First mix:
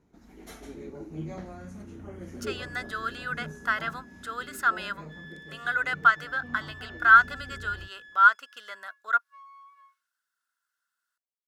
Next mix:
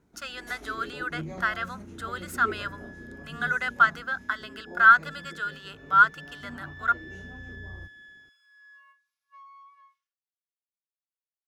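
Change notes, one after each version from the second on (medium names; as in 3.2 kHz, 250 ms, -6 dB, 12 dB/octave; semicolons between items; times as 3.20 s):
speech: entry -2.25 s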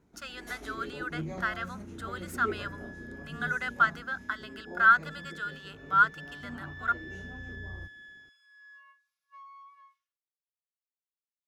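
speech -4.5 dB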